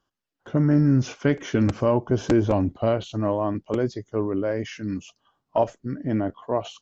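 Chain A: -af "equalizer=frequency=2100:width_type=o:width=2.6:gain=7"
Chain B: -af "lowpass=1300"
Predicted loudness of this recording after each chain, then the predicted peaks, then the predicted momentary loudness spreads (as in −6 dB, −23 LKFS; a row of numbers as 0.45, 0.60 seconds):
−23.0, −24.5 LKFS; −5.5, −9.0 dBFS; 8, 8 LU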